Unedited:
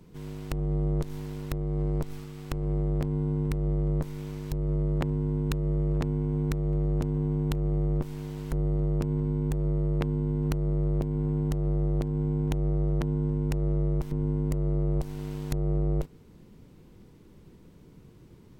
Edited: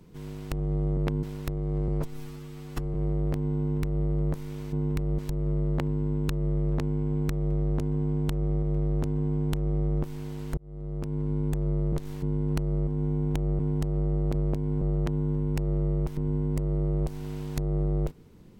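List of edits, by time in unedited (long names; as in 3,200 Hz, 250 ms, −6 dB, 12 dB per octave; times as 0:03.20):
0:00.97–0:01.27: swap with 0:09.91–0:10.17
0:01.92–0:02.63: time-stretch 1.5×
0:03.27–0:03.73: duplicate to 0:04.41
0:06.61–0:07.85: repeat, 2 plays
0:08.56–0:09.35: fade in
0:10.82–0:11.29: swap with 0:12.04–0:12.76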